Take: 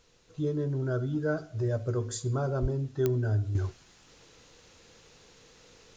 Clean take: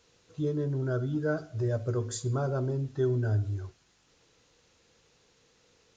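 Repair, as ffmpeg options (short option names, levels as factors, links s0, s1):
-filter_complex "[0:a]adeclick=t=4,asplit=3[s0][s1][s2];[s0]afade=t=out:st=2.61:d=0.02[s3];[s1]highpass=f=140:w=0.5412,highpass=f=140:w=1.3066,afade=t=in:st=2.61:d=0.02,afade=t=out:st=2.73:d=0.02[s4];[s2]afade=t=in:st=2.73:d=0.02[s5];[s3][s4][s5]amix=inputs=3:normalize=0,agate=range=0.0891:threshold=0.00316,asetnsamples=n=441:p=0,asendcmd='3.55 volume volume -8.5dB',volume=1"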